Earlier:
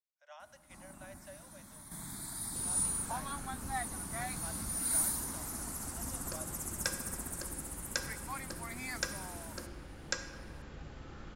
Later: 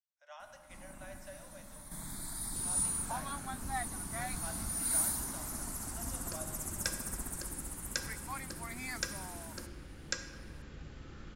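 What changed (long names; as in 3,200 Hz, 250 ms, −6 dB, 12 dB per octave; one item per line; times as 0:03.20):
speech: send +10.0 dB
first sound: remove high-pass filter 52 Hz
second sound: add parametric band 790 Hz −7 dB 1.2 octaves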